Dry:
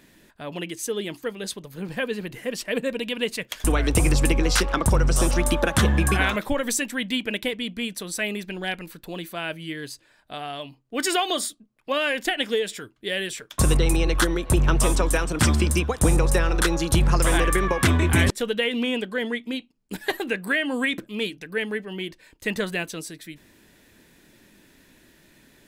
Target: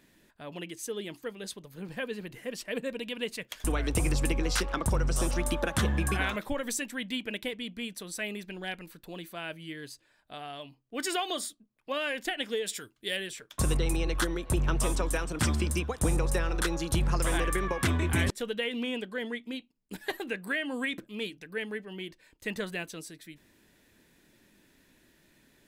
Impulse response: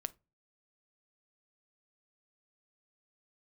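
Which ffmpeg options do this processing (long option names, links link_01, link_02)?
-filter_complex "[0:a]asettb=1/sr,asplit=3[link_01][link_02][link_03];[link_01]atrim=end=12.664[link_04];[link_02]atrim=start=12.66:end=13.17,asetpts=PTS-STARTPTS,afade=type=in:duration=0.004:curve=qsin,afade=type=out:start_time=0.506:duration=0.004:curve=qsin,highshelf=frequency=3200:gain=10.5[link_05];[link_03]atrim=start=13.166[link_06];[link_04][link_05]acrossfade=duration=0.004:curve1=hsin:curve2=qsin[link_07];[link_07][link_06]acrossfade=duration=0.004:curve1=qsin:curve2=hsin,volume=-8dB"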